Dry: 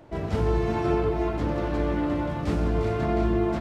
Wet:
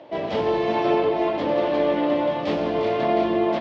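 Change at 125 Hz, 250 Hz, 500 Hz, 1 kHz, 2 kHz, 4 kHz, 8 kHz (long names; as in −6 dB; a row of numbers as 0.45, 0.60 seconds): −10.0 dB, +2.0 dB, +6.5 dB, +6.5 dB, +5.0 dB, +9.5 dB, can't be measured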